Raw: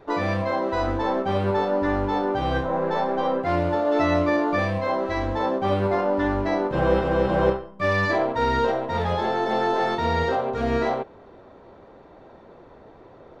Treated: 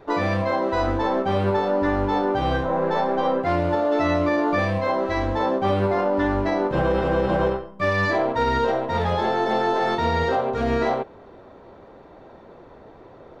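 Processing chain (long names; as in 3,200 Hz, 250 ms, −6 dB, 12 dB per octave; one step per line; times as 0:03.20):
brickwall limiter −14.5 dBFS, peak gain reduction 6.5 dB
level +2 dB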